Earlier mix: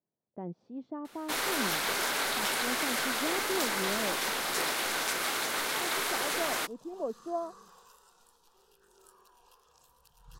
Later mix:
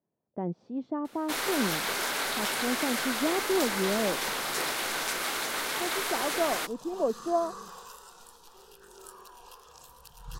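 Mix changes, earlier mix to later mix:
speech +7.0 dB; second sound +11.5 dB

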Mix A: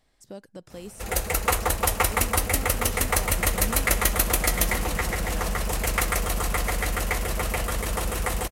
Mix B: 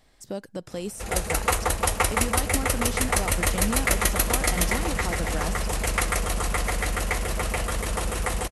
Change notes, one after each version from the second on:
speech +7.5 dB; background: add brick-wall FIR low-pass 12000 Hz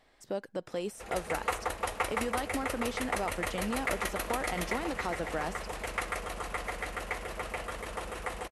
background -7.0 dB; master: add tone controls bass -10 dB, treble -10 dB

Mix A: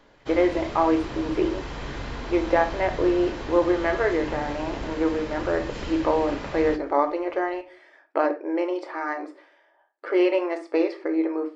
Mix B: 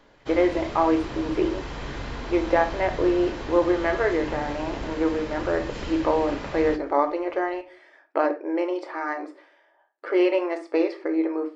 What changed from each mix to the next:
none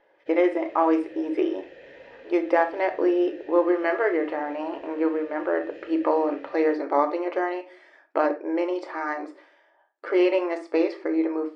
background: add vowel filter e

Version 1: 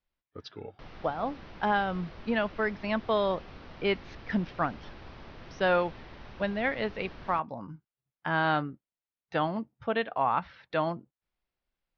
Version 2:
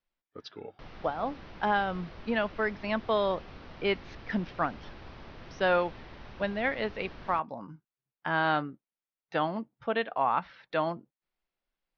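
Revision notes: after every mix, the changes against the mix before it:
speech: add bell 75 Hz -13 dB 1.3 oct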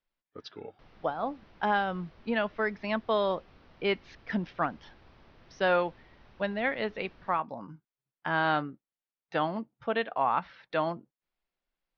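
background -10.5 dB

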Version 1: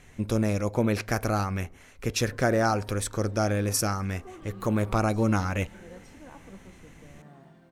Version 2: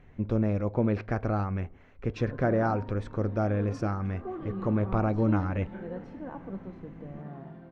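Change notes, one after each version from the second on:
background +10.0 dB; master: add tape spacing loss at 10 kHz 42 dB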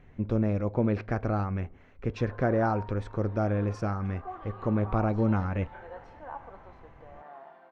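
background: add resonant high-pass 810 Hz, resonance Q 1.8

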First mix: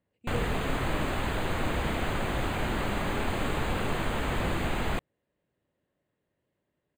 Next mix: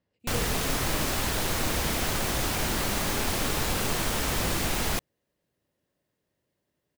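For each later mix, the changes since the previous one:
speech: add air absorption 120 m; master: remove running mean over 8 samples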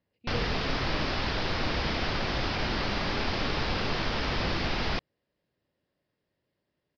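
master: add elliptic low-pass 5100 Hz, stop band 40 dB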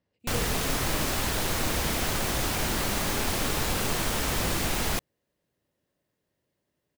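master: remove elliptic low-pass 5100 Hz, stop band 40 dB

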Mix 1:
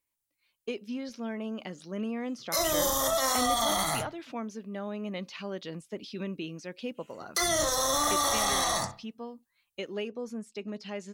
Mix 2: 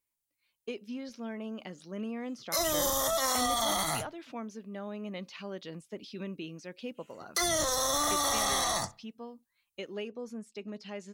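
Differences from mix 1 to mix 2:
speech -3.5 dB; background: send -11.0 dB

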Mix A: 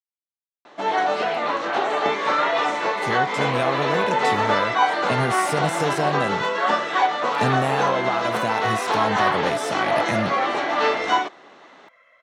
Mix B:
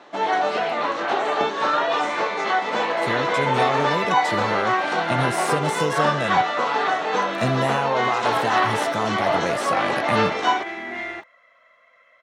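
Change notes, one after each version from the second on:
first sound: entry -0.65 s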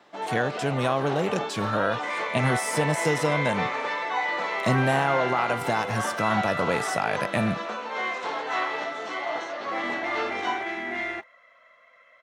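speech: entry -2.75 s; first sound -9.5 dB

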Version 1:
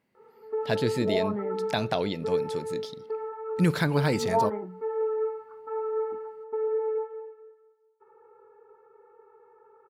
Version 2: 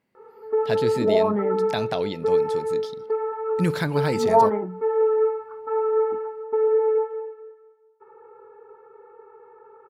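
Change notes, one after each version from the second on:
background +8.0 dB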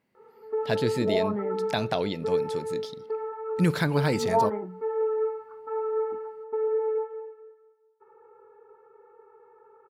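background -6.5 dB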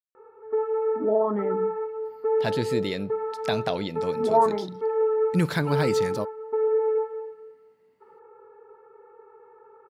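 speech: entry +1.75 s; background +3.5 dB

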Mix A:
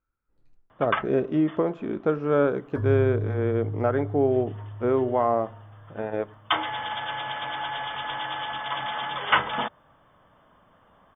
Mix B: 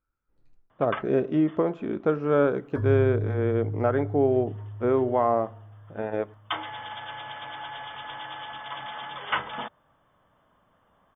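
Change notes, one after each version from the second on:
first sound -6.5 dB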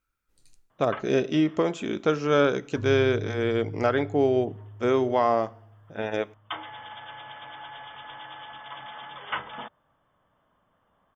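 speech: remove LPF 1300 Hz 12 dB/oct; first sound -4.0 dB; second sound -6.0 dB

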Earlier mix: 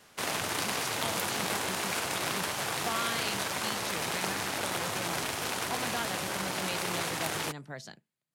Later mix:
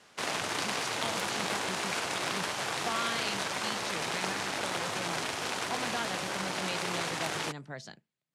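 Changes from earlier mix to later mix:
background: add low shelf 100 Hz -9.5 dB; master: add LPF 7900 Hz 12 dB/oct

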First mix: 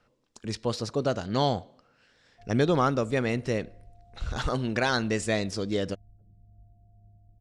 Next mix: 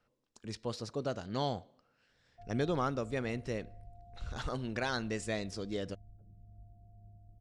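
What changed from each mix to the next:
speech -9.0 dB; background: remove air absorption 470 m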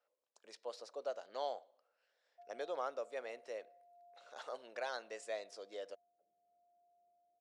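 master: add ladder high-pass 490 Hz, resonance 50%

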